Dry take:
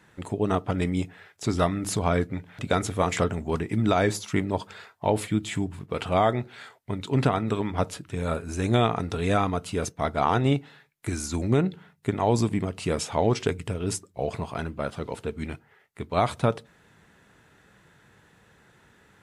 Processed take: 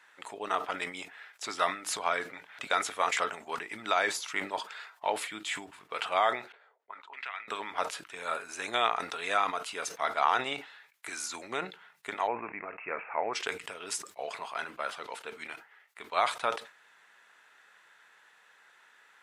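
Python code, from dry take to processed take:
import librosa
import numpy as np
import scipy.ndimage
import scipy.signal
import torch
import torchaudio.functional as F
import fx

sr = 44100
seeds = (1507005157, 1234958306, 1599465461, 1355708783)

y = fx.auto_wah(x, sr, base_hz=400.0, top_hz=2200.0, q=3.0, full_db=-23.0, direction='up', at=(6.52, 7.48))
y = fx.cheby1_lowpass(y, sr, hz=2600.0, order=8, at=(12.26, 13.33), fade=0.02)
y = scipy.signal.sosfilt(scipy.signal.butter(2, 1100.0, 'highpass', fs=sr, output='sos'), y)
y = fx.high_shelf(y, sr, hz=4400.0, db=-7.5)
y = fx.sustainer(y, sr, db_per_s=140.0)
y = y * librosa.db_to_amplitude(3.0)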